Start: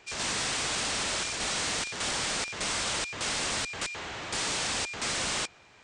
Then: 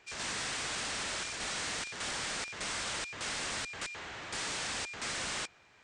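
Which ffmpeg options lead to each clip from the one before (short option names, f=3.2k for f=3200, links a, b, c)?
-af "equalizer=f=1.7k:w=1.5:g=3.5,volume=-7dB"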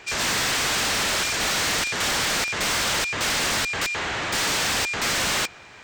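-af "aeval=exprs='0.0422*sin(PI/2*2*val(0)/0.0422)':c=same,volume=7dB"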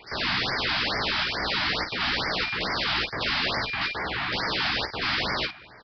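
-filter_complex "[0:a]asplit=2[a][b];[b]aecho=0:1:16|51:0.562|0.376[c];[a][c]amix=inputs=2:normalize=0,aresample=11025,aresample=44100,afftfilt=real='re*(1-between(b*sr/1024,420*pow(3300/420,0.5+0.5*sin(2*PI*2.3*pts/sr))/1.41,420*pow(3300/420,0.5+0.5*sin(2*PI*2.3*pts/sr))*1.41))':imag='im*(1-between(b*sr/1024,420*pow(3300/420,0.5+0.5*sin(2*PI*2.3*pts/sr))/1.41,420*pow(3300/420,0.5+0.5*sin(2*PI*2.3*pts/sr))*1.41))':win_size=1024:overlap=0.75,volume=-2.5dB"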